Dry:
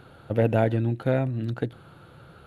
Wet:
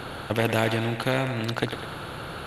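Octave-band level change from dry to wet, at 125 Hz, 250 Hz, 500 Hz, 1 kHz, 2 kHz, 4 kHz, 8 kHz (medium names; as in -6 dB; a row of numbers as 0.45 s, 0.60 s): -3.5 dB, -1.0 dB, -1.5 dB, +4.5 dB, +9.0 dB, +16.0 dB, no reading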